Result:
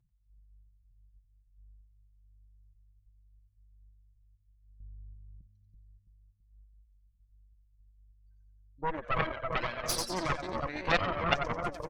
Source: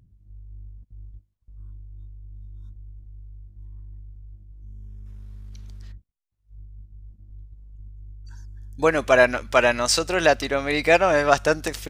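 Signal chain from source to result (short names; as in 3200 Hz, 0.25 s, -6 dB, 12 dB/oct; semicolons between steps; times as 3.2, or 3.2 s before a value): spectral contrast raised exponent 2; 4.8–5.41 resonant low shelf 730 Hz +10 dB, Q 3; comb 5.8 ms, depth 69%; split-band echo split 730 Hz, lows 0.331 s, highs 90 ms, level -4 dB; added harmonics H 3 -7 dB, 6 -17 dB, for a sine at -1 dBFS; gain -8 dB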